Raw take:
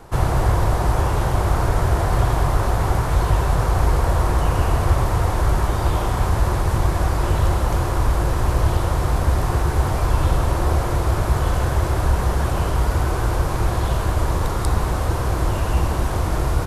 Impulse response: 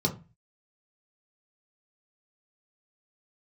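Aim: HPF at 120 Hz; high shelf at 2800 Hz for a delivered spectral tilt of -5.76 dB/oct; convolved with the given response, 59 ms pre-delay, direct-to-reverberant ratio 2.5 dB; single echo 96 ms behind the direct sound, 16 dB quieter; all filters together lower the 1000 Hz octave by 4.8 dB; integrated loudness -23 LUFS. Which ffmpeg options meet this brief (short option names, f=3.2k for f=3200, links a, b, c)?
-filter_complex "[0:a]highpass=120,equalizer=f=1k:t=o:g=-7,highshelf=f=2.8k:g=6.5,aecho=1:1:96:0.158,asplit=2[a][b];[1:a]atrim=start_sample=2205,adelay=59[c];[b][c]afir=irnorm=-1:irlink=0,volume=-11dB[d];[a][d]amix=inputs=2:normalize=0,volume=-3dB"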